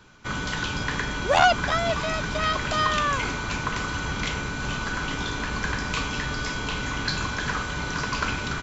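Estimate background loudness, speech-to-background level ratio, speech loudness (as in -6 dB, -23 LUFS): -28.0 LUFS, 3.5 dB, -24.5 LUFS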